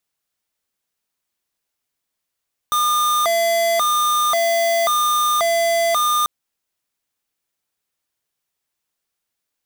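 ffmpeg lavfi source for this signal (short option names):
-f lavfi -i "aevalsrc='0.133*(2*lt(mod((942.5*t+267.5/0.93*(0.5-abs(mod(0.93*t,1)-0.5))),1),0.5)-1)':d=3.54:s=44100"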